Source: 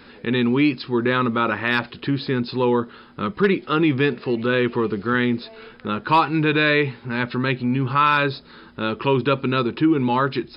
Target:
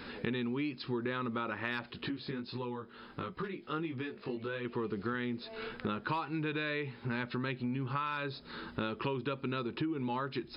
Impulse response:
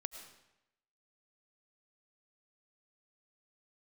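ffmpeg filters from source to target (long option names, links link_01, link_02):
-filter_complex "[0:a]acompressor=threshold=-32dB:ratio=16,asettb=1/sr,asplit=3[link_01][link_02][link_03];[link_01]atrim=end=1.984[link_04];[link_02]atrim=start=1.98:end=4.65,asetpts=PTS-STARTPTS,afade=type=in:duration=0.004:curve=qsin,afade=type=out:start_time=2.666:duration=0.004:curve=qsin,flanger=delay=17:depth=3.3:speed=1.5[link_05];[link_03]atrim=start=4.646[link_06];[link_04][link_05]acrossfade=duration=0.004:curve1=hsin:curve2=qsin[link_07];[link_07][link_06]acrossfade=duration=0.004:curve1=qsin:curve2=hsin"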